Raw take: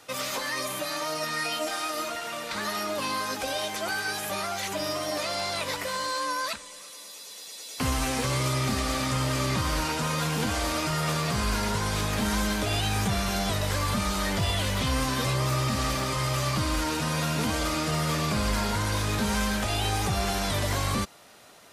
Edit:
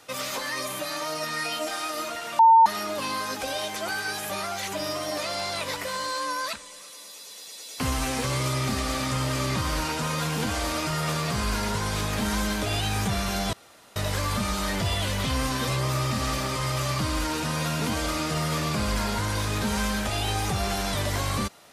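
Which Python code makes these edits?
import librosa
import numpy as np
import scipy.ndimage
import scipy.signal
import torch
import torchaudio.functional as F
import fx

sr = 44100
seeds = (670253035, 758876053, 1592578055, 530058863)

y = fx.edit(x, sr, fx.bleep(start_s=2.39, length_s=0.27, hz=904.0, db=-11.0),
    fx.insert_room_tone(at_s=13.53, length_s=0.43), tone=tone)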